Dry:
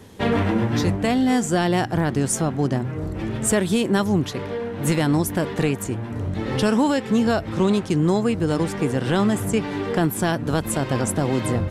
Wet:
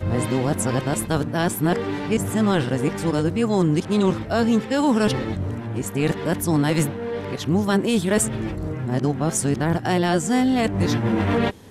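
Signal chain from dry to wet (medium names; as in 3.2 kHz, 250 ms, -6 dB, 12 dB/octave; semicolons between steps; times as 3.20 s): reverse the whole clip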